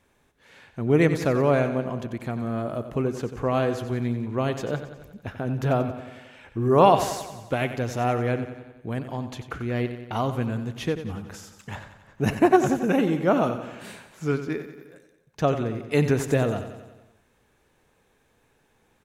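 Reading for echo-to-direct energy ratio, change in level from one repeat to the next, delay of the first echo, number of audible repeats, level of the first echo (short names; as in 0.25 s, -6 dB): -9.0 dB, -4.5 dB, 91 ms, 6, -11.0 dB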